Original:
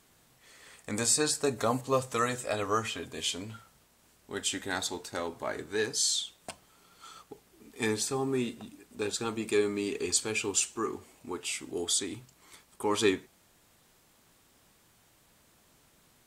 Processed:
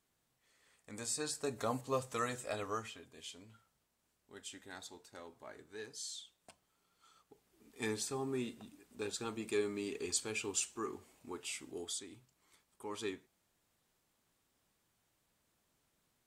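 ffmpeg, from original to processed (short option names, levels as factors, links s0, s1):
-af "volume=1.12,afade=t=in:st=0.81:d=0.88:silence=0.354813,afade=t=out:st=2.55:d=0.49:silence=0.354813,afade=t=in:st=7.22:d=0.65:silence=0.354813,afade=t=out:st=11.62:d=0.4:silence=0.446684"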